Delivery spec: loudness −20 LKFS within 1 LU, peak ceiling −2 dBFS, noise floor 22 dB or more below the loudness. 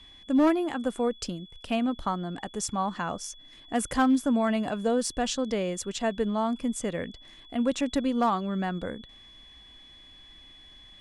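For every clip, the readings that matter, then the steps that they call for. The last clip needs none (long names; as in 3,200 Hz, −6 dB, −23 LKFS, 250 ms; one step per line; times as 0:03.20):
share of clipped samples 0.4%; peaks flattened at −16.5 dBFS; interfering tone 3,400 Hz; level of the tone −50 dBFS; integrated loudness −28.5 LKFS; sample peak −16.5 dBFS; target loudness −20.0 LKFS
→ clipped peaks rebuilt −16.5 dBFS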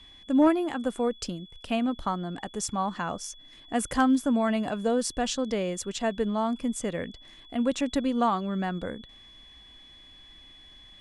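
share of clipped samples 0.0%; interfering tone 3,400 Hz; level of the tone −50 dBFS
→ notch filter 3,400 Hz, Q 30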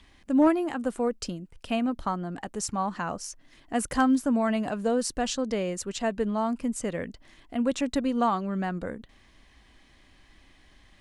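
interfering tone none found; integrated loudness −28.0 LKFS; sample peak −11.0 dBFS; target loudness −20.0 LKFS
→ level +8 dB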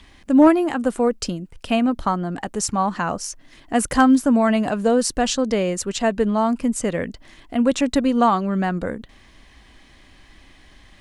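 integrated loudness −20.0 LKFS; sample peak −3.0 dBFS; background noise floor −51 dBFS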